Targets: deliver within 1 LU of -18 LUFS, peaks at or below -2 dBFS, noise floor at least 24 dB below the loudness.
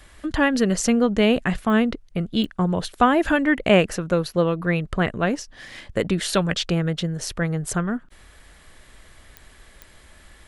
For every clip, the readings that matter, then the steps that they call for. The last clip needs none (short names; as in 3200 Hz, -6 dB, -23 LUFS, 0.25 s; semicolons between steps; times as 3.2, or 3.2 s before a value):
clicks 4; loudness -22.0 LUFS; peak -2.5 dBFS; loudness target -18.0 LUFS
-> de-click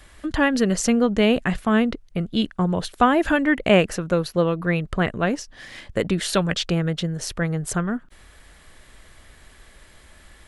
clicks 0; loudness -22.0 LUFS; peak -2.5 dBFS; loudness target -18.0 LUFS
-> gain +4 dB; limiter -2 dBFS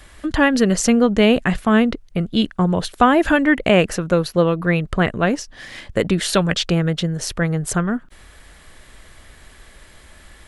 loudness -18.5 LUFS; peak -2.0 dBFS; noise floor -46 dBFS